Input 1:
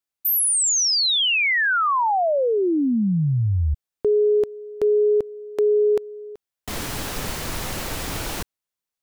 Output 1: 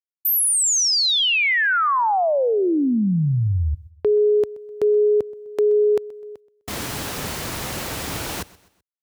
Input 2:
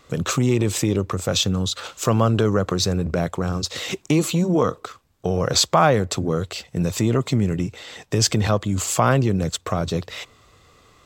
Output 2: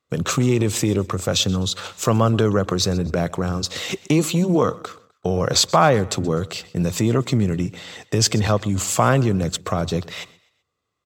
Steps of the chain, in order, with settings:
high-pass filter 63 Hz
noise gate −42 dBFS, range −26 dB
on a send: repeating echo 127 ms, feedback 41%, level −21.5 dB
on the sum: level +1 dB

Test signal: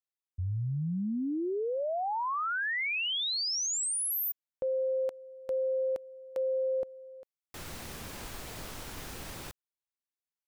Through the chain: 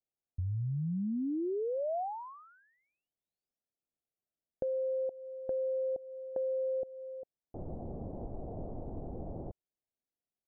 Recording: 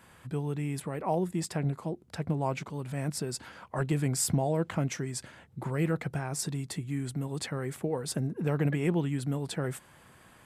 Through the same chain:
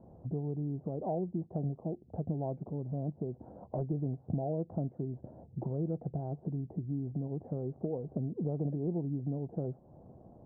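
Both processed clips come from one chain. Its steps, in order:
elliptic low-pass filter 720 Hz, stop band 80 dB
downward compressor 2.5 to 1, threshold −42 dBFS
level +6 dB

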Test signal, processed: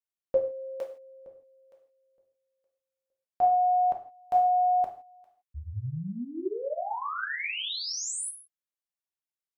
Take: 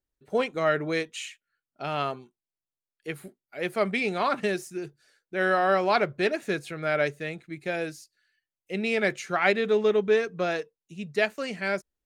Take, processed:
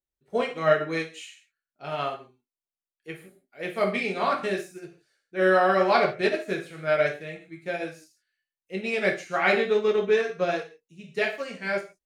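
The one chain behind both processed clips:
reverb whose tail is shaped and stops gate 190 ms falling, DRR −1 dB
expander for the loud parts 1.5 to 1, over −36 dBFS

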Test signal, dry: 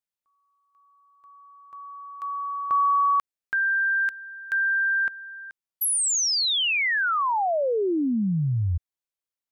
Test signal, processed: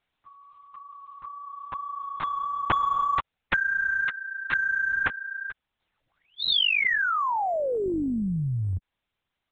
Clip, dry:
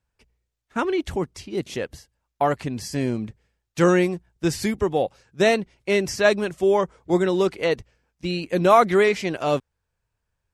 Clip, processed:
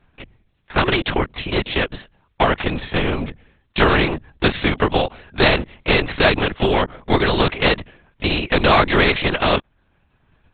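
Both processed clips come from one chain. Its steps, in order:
transient designer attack +4 dB, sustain −3 dB
linear-prediction vocoder at 8 kHz whisper
every bin compressed towards the loudest bin 2 to 1
level +1 dB

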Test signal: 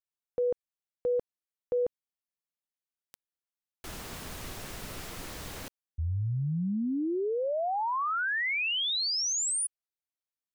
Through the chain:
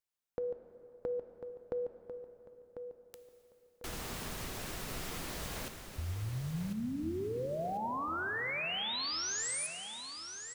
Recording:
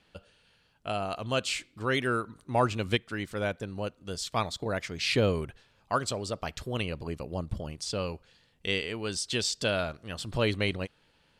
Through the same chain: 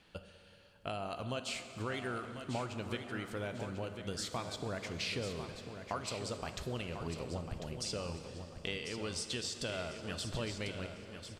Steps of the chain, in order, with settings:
downward compressor 6 to 1, threshold −38 dBFS
repeating echo 1,046 ms, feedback 35%, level −9 dB
dense smooth reverb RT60 3.7 s, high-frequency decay 0.75×, DRR 8 dB
level +1 dB

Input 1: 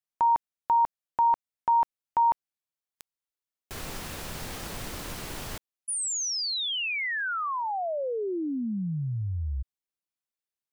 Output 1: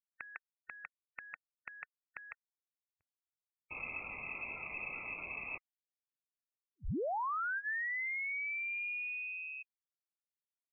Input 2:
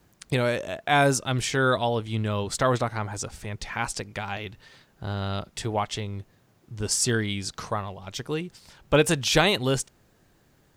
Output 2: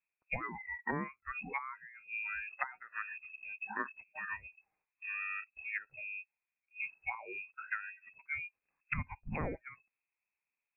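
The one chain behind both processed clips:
noise reduction from a noise print of the clip's start 26 dB
voice inversion scrambler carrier 2,600 Hz
treble cut that deepens with the level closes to 560 Hz, closed at −23 dBFS
level −5.5 dB

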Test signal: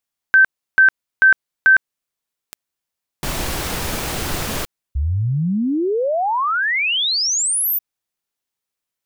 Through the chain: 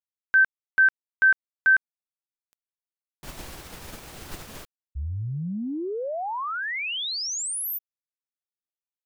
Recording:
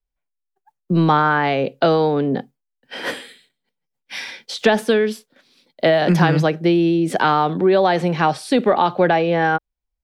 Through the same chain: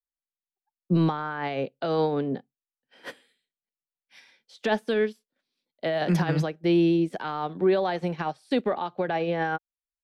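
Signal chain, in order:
brickwall limiter −10.5 dBFS
expander for the loud parts 2.5 to 1, over −30 dBFS
level −2.5 dB

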